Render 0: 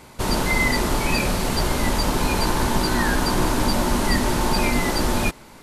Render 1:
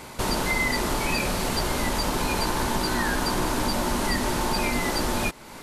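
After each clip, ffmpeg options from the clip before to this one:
ffmpeg -i in.wav -af "lowshelf=frequency=250:gain=-4.5,acompressor=threshold=-34dB:ratio=2,volume=5.5dB" out.wav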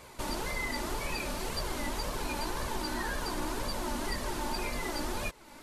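ffmpeg -i in.wav -af "flanger=delay=1.7:depth=1.8:regen=30:speed=1.9:shape=sinusoidal,volume=-6dB" out.wav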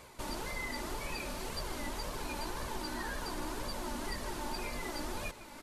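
ffmpeg -i in.wav -af "areverse,acompressor=mode=upward:threshold=-37dB:ratio=2.5,areverse,aecho=1:1:154:0.15,volume=-4.5dB" out.wav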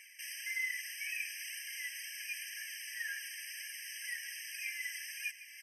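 ffmpeg -i in.wav -af "afftfilt=real='re*eq(mod(floor(b*sr/1024/1600),2),1)':imag='im*eq(mod(floor(b*sr/1024/1600),2),1)':win_size=1024:overlap=0.75,volume=5.5dB" out.wav

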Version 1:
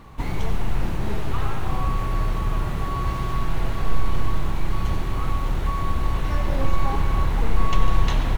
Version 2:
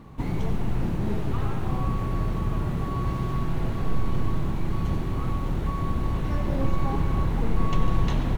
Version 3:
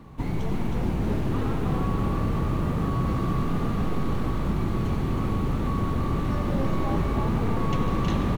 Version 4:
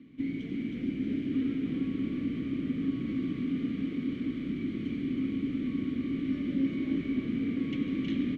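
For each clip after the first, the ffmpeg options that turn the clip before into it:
ffmpeg -i in.wav -af "equalizer=frequency=200:width=0.43:gain=10.5,volume=-7dB" out.wav
ffmpeg -i in.wav -filter_complex "[0:a]asplit=9[link_01][link_02][link_03][link_04][link_05][link_06][link_07][link_08][link_09];[link_02]adelay=318,afreqshift=50,volume=-4dB[link_10];[link_03]adelay=636,afreqshift=100,volume=-8.9dB[link_11];[link_04]adelay=954,afreqshift=150,volume=-13.8dB[link_12];[link_05]adelay=1272,afreqshift=200,volume=-18.6dB[link_13];[link_06]adelay=1590,afreqshift=250,volume=-23.5dB[link_14];[link_07]adelay=1908,afreqshift=300,volume=-28.4dB[link_15];[link_08]adelay=2226,afreqshift=350,volume=-33.3dB[link_16];[link_09]adelay=2544,afreqshift=400,volume=-38.2dB[link_17];[link_01][link_10][link_11][link_12][link_13][link_14][link_15][link_16][link_17]amix=inputs=9:normalize=0,acrossover=split=150[link_18][link_19];[link_18]alimiter=limit=-22dB:level=0:latency=1[link_20];[link_20][link_19]amix=inputs=2:normalize=0" out.wav
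ffmpeg -i in.wav -filter_complex "[0:a]asplit=3[link_01][link_02][link_03];[link_01]bandpass=frequency=270:width_type=q:width=8,volume=0dB[link_04];[link_02]bandpass=frequency=2290:width_type=q:width=8,volume=-6dB[link_05];[link_03]bandpass=frequency=3010:width_type=q:width=8,volume=-9dB[link_06];[link_04][link_05][link_06]amix=inputs=3:normalize=0,volume=6dB" out.wav

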